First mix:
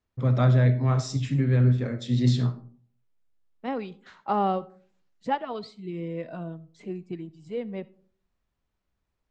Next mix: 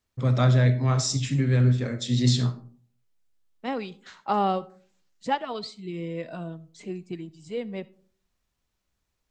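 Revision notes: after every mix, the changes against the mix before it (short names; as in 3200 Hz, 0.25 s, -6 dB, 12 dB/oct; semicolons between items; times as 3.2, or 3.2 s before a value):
master: remove LPF 1800 Hz 6 dB/oct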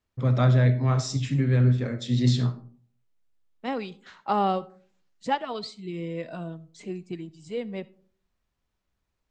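first voice: add LPF 2900 Hz 6 dB/oct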